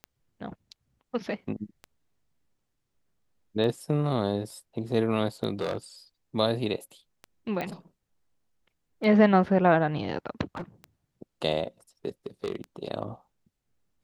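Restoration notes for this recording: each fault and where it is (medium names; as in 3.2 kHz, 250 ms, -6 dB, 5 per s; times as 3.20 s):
tick 33 1/3 rpm -25 dBFS
5.61–5.76 s: clipped -24 dBFS
7.61 s: pop -19 dBFS
10.55–10.62 s: clipped -31 dBFS
12.26–12.56 s: clipped -25 dBFS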